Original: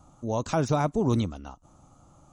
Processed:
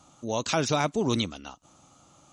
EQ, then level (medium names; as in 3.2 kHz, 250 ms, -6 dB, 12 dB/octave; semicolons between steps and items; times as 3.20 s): frequency weighting D; 0.0 dB